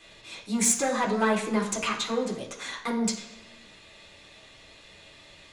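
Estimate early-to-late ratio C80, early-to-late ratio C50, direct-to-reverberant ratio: 10.5 dB, 7.5 dB, -4.0 dB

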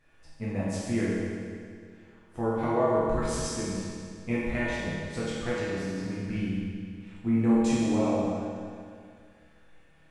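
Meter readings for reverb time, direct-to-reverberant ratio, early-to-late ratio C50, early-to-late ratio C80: 2.2 s, -9.5 dB, -3.0 dB, -1.0 dB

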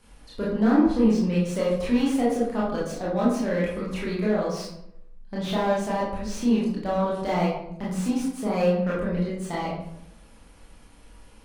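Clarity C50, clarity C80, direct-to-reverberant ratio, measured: 1.5 dB, 6.0 dB, -7.5 dB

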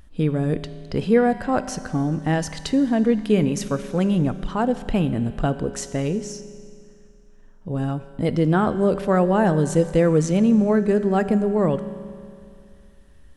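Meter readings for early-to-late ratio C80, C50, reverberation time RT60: 13.5 dB, 12.5 dB, 2.4 s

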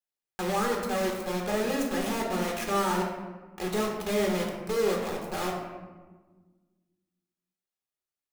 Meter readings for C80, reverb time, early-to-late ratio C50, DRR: 5.5 dB, 1.4 s, 3.5 dB, -1.5 dB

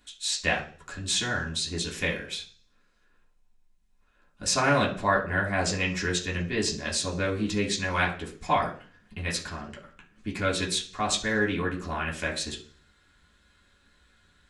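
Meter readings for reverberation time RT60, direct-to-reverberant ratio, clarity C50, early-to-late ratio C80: 0.40 s, -3.5 dB, 11.0 dB, 15.5 dB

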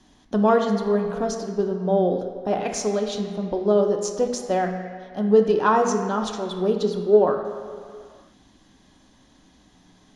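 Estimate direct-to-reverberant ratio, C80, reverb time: 3.0 dB, 7.5 dB, no single decay rate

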